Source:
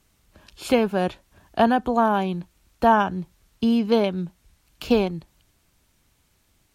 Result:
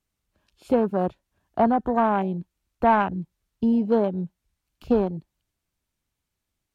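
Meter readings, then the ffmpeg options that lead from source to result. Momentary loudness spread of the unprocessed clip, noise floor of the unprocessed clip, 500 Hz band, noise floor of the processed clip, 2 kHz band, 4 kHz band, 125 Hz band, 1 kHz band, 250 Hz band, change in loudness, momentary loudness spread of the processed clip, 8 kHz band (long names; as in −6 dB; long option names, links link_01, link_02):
16 LU, −66 dBFS, −1.5 dB, −82 dBFS, −4.5 dB, below −10 dB, −1.0 dB, −1.5 dB, −1.0 dB, −1.5 dB, 14 LU, can't be measured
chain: -af "afwtdn=0.0398,acontrast=37,volume=-6dB"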